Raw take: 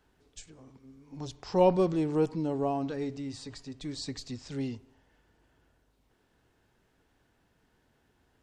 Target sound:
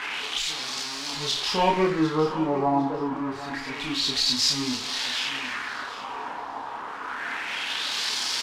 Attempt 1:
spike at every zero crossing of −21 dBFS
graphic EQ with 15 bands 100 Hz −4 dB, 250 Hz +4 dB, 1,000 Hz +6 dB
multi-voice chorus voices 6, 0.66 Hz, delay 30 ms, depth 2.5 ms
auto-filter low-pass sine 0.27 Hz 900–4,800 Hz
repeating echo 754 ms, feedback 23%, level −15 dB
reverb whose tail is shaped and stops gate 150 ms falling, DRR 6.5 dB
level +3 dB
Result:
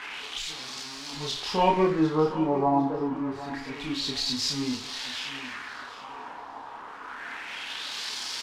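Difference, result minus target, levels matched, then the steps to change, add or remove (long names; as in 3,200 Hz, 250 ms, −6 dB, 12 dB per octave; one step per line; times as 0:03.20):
spike at every zero crossing: distortion −6 dB
change: spike at every zero crossing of −14.5 dBFS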